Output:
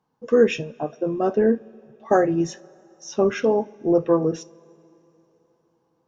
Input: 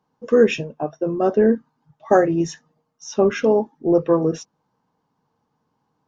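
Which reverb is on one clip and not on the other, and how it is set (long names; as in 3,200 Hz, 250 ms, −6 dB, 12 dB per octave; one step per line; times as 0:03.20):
coupled-rooms reverb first 0.24 s, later 3.7 s, from −22 dB, DRR 14 dB
level −2.5 dB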